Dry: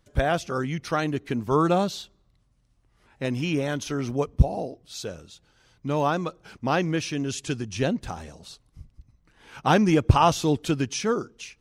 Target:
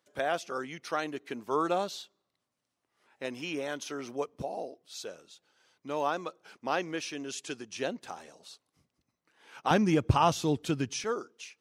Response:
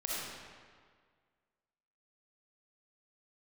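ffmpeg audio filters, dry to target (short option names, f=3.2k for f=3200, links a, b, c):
-af "asetnsamples=n=441:p=0,asendcmd='9.71 highpass f 89;11.04 highpass f 380',highpass=360,volume=-5.5dB"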